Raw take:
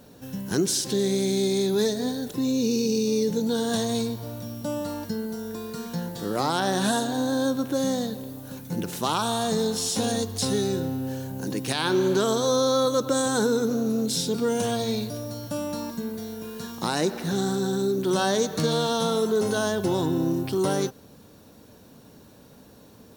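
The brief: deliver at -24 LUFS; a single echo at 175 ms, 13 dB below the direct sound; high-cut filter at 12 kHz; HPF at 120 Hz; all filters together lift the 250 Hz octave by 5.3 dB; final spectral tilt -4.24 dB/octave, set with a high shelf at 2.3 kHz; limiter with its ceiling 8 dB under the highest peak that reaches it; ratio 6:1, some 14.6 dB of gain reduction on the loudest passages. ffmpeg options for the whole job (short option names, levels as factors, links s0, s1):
-af "highpass=120,lowpass=12000,equalizer=f=250:t=o:g=6.5,highshelf=f=2300:g=7.5,acompressor=threshold=0.0251:ratio=6,alimiter=level_in=1.19:limit=0.0631:level=0:latency=1,volume=0.841,aecho=1:1:175:0.224,volume=3.55"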